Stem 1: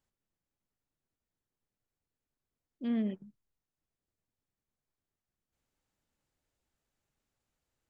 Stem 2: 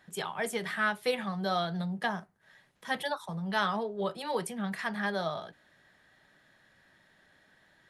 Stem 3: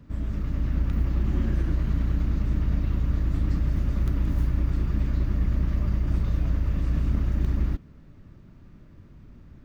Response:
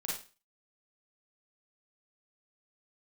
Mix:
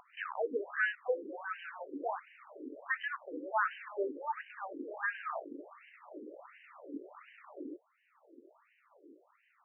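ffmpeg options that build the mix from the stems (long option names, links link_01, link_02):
-filter_complex "[0:a]volume=0.5dB[link_01];[1:a]acrusher=bits=5:mix=0:aa=0.5,volume=1dB,asplit=2[link_02][link_03];[2:a]equalizer=frequency=1600:width_type=o:width=0.25:gain=-12.5,acompressor=mode=upward:threshold=-33dB:ratio=2.5,volume=-1dB[link_04];[link_03]apad=whole_len=425393[link_05];[link_04][link_05]sidechaincompress=threshold=-30dB:ratio=8:attack=47:release=514[link_06];[link_01][link_02][link_06]amix=inputs=3:normalize=0,afftfilt=real='re*between(b*sr/1024,360*pow(2200/360,0.5+0.5*sin(2*PI*1.4*pts/sr))/1.41,360*pow(2200/360,0.5+0.5*sin(2*PI*1.4*pts/sr))*1.41)':imag='im*between(b*sr/1024,360*pow(2200/360,0.5+0.5*sin(2*PI*1.4*pts/sr))/1.41,360*pow(2200/360,0.5+0.5*sin(2*PI*1.4*pts/sr))*1.41)':win_size=1024:overlap=0.75"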